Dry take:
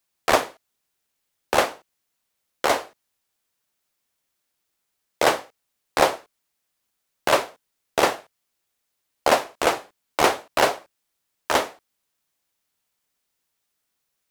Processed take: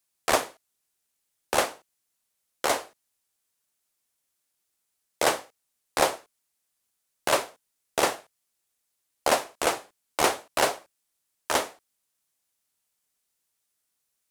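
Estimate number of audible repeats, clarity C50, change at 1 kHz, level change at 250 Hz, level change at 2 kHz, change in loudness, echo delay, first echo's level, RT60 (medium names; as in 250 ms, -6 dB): no echo, no reverb, -5.0 dB, -5.0 dB, -4.5 dB, -4.0 dB, no echo, no echo, no reverb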